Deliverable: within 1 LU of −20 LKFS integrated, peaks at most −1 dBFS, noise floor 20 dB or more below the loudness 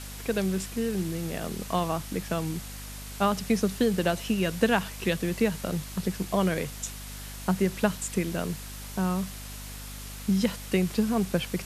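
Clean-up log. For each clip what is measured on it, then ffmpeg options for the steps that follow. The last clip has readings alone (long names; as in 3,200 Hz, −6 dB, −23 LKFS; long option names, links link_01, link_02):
mains hum 50 Hz; hum harmonics up to 250 Hz; level of the hum −39 dBFS; background noise floor −40 dBFS; target noise floor −49 dBFS; integrated loudness −28.5 LKFS; sample peak −7.5 dBFS; target loudness −20.0 LKFS
→ -af "bandreject=frequency=50:width_type=h:width=4,bandreject=frequency=100:width_type=h:width=4,bandreject=frequency=150:width_type=h:width=4,bandreject=frequency=200:width_type=h:width=4,bandreject=frequency=250:width_type=h:width=4"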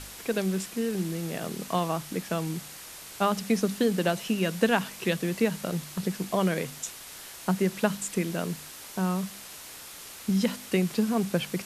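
mains hum none found; background noise floor −44 dBFS; target noise floor −49 dBFS
→ -af "afftdn=noise_reduction=6:noise_floor=-44"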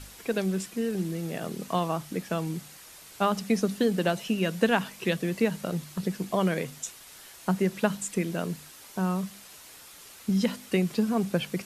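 background noise floor −49 dBFS; integrated loudness −29.0 LKFS; sample peak −7.5 dBFS; target loudness −20.0 LKFS
→ -af "volume=9dB,alimiter=limit=-1dB:level=0:latency=1"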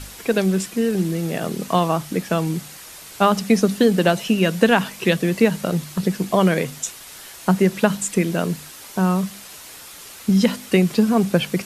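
integrated loudness −20.0 LKFS; sample peak −1.0 dBFS; background noise floor −40 dBFS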